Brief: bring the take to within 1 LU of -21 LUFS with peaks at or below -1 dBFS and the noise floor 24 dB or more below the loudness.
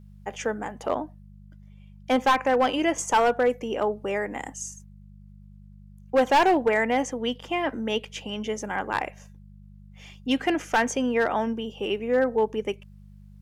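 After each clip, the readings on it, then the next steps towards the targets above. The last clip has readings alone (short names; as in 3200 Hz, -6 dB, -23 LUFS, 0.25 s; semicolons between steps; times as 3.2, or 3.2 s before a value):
clipped 0.7%; flat tops at -14.5 dBFS; hum 50 Hz; harmonics up to 200 Hz; hum level -45 dBFS; loudness -25.5 LUFS; peak -14.5 dBFS; loudness target -21.0 LUFS
-> clip repair -14.5 dBFS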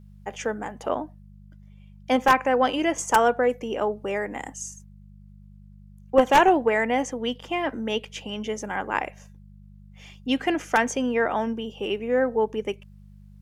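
clipped 0.0%; hum 50 Hz; harmonics up to 200 Hz; hum level -45 dBFS
-> de-hum 50 Hz, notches 4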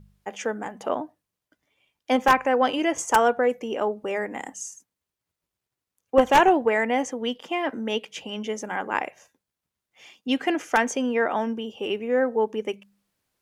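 hum none; loudness -24.5 LUFS; peak -5.5 dBFS; loudness target -21.0 LUFS
-> gain +3.5 dB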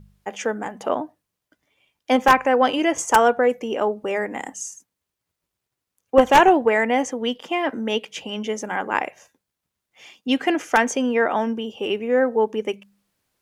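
loudness -21.0 LUFS; peak -2.0 dBFS; noise floor -83 dBFS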